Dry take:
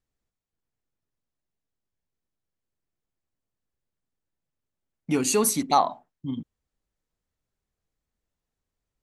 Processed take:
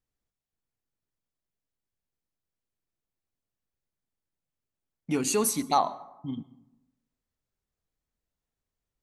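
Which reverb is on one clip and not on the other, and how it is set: plate-style reverb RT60 0.96 s, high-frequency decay 0.45×, pre-delay 90 ms, DRR 18.5 dB; gain -3.5 dB

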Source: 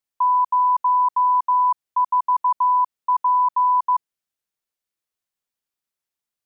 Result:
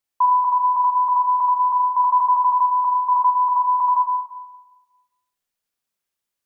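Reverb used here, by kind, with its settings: Schroeder reverb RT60 1.2 s, combs from 32 ms, DRR 2.5 dB; gain +2 dB

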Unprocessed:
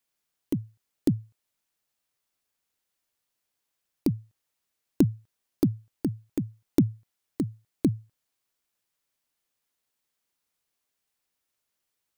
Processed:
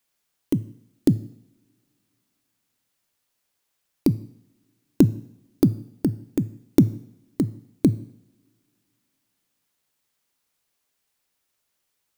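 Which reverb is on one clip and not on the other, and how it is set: two-slope reverb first 0.72 s, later 2.9 s, from -27 dB, DRR 15.5 dB; gain +5.5 dB

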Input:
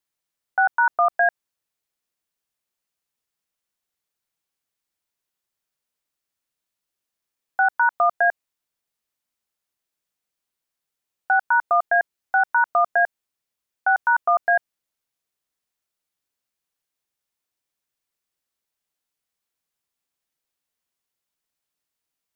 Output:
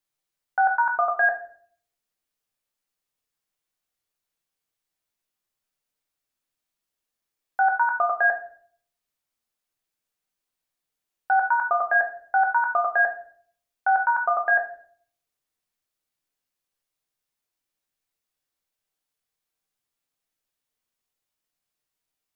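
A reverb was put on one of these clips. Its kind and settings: shoebox room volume 62 m³, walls mixed, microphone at 0.51 m; gain -2.5 dB

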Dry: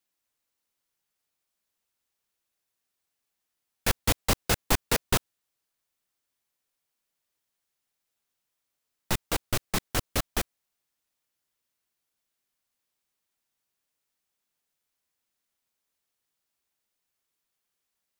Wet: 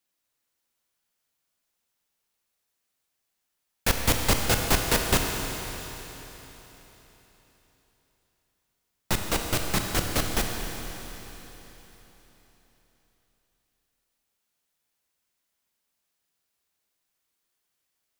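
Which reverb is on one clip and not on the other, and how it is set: Schroeder reverb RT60 3.9 s, combs from 26 ms, DRR 2.5 dB; gain +1.5 dB

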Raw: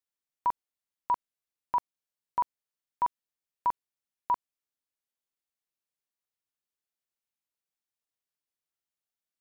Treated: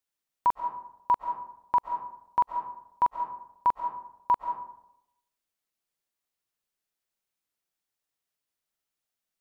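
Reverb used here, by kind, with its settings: digital reverb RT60 0.82 s, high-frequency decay 0.45×, pre-delay 95 ms, DRR 6 dB; gain +4 dB

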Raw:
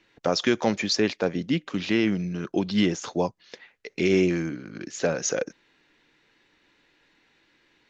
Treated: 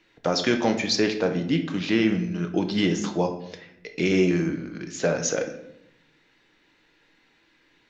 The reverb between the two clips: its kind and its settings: shoebox room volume 180 m³, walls mixed, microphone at 0.55 m

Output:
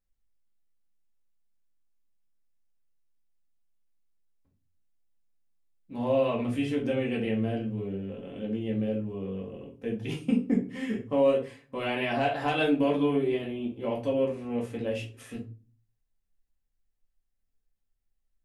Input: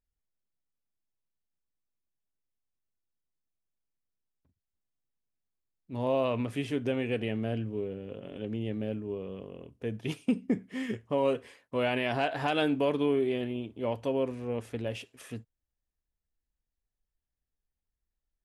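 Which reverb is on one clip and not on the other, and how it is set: shoebox room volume 190 m³, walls furnished, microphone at 2.1 m; gain -3.5 dB

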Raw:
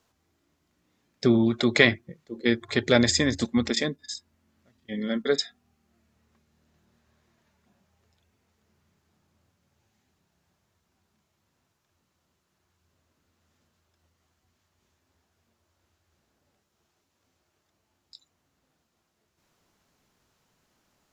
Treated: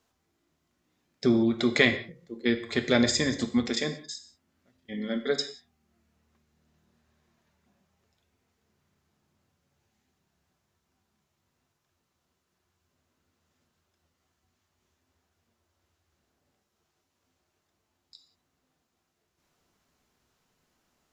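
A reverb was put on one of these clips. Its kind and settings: non-linear reverb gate 0.21 s falling, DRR 7.5 dB; gain -3.5 dB

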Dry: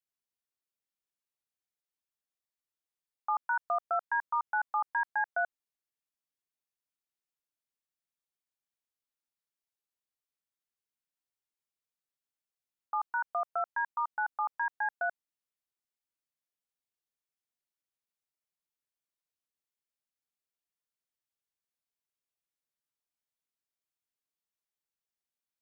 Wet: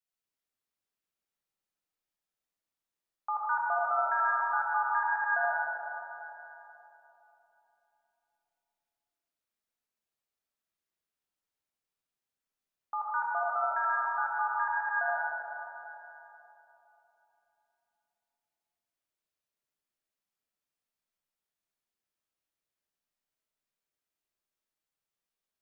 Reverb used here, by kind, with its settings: digital reverb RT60 3.5 s, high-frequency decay 0.4×, pre-delay 25 ms, DRR -5 dB; gain -2.5 dB

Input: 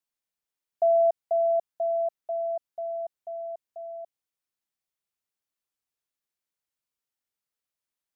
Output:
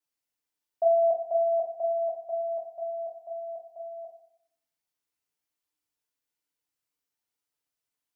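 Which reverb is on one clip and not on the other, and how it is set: FDN reverb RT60 0.69 s, low-frequency decay 0.9×, high-frequency decay 1×, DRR -4 dB; gain -4 dB

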